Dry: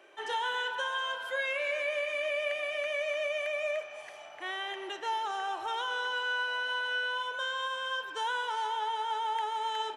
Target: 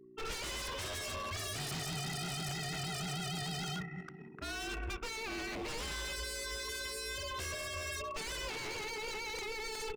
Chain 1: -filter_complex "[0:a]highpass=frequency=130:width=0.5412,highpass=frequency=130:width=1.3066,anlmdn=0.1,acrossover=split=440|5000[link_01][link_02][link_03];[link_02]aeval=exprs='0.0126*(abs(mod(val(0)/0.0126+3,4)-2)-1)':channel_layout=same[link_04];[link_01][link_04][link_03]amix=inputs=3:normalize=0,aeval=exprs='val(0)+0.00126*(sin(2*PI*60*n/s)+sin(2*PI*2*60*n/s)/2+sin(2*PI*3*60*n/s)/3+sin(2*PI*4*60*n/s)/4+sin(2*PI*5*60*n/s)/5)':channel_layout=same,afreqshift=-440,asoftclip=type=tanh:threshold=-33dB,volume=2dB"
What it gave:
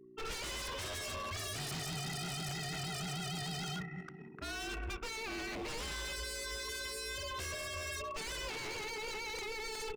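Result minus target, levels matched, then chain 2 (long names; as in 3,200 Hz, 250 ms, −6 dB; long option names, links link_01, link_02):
soft clipping: distortion +20 dB
-filter_complex "[0:a]highpass=frequency=130:width=0.5412,highpass=frequency=130:width=1.3066,anlmdn=0.1,acrossover=split=440|5000[link_01][link_02][link_03];[link_02]aeval=exprs='0.0126*(abs(mod(val(0)/0.0126+3,4)-2)-1)':channel_layout=same[link_04];[link_01][link_04][link_03]amix=inputs=3:normalize=0,aeval=exprs='val(0)+0.00126*(sin(2*PI*60*n/s)+sin(2*PI*2*60*n/s)/2+sin(2*PI*3*60*n/s)/3+sin(2*PI*4*60*n/s)/4+sin(2*PI*5*60*n/s)/5)':channel_layout=same,afreqshift=-440,asoftclip=type=tanh:threshold=-22dB,volume=2dB"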